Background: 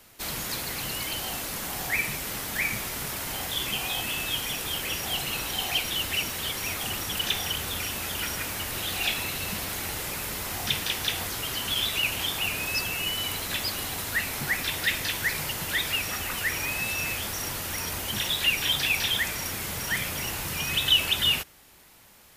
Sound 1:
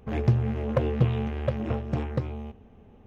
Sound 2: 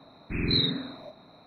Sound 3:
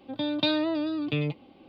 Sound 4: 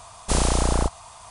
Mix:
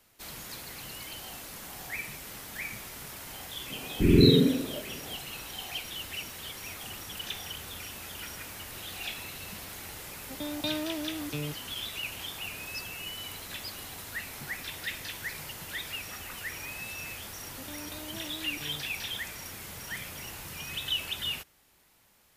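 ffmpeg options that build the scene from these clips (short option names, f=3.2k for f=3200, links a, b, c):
-filter_complex "[3:a]asplit=2[a][b];[0:a]volume=-10dB[c];[2:a]lowshelf=f=610:t=q:w=3:g=9.5[d];[b]acompressor=threshold=-34dB:ratio=6:attack=3.2:release=140:knee=1:detection=peak[e];[d]atrim=end=1.46,asetpts=PTS-STARTPTS,volume=-1.5dB,afade=t=in:d=0.004:c=hsin,afade=t=out:st=1.456:d=0.004:c=hsin,adelay=3700[f];[a]atrim=end=1.68,asetpts=PTS-STARTPTS,volume=-7.5dB,afade=t=in:d=0.004:c=hsin,afade=t=out:st=1.676:d=0.004:c=hsin,adelay=10210[g];[e]atrim=end=1.68,asetpts=PTS-STARTPTS,volume=-7.5dB,afade=t=in:d=0.004:c=hsin,afade=t=out:st=1.676:d=0.004:c=hsin,adelay=17490[h];[c][f][g][h]amix=inputs=4:normalize=0"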